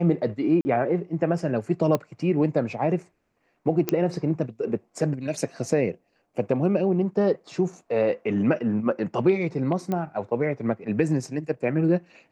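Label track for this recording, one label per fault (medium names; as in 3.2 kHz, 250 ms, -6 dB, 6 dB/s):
0.610000	0.650000	dropout 40 ms
1.950000	1.950000	pop -11 dBFS
3.890000	3.890000	pop -8 dBFS
9.920000	9.920000	pop -16 dBFS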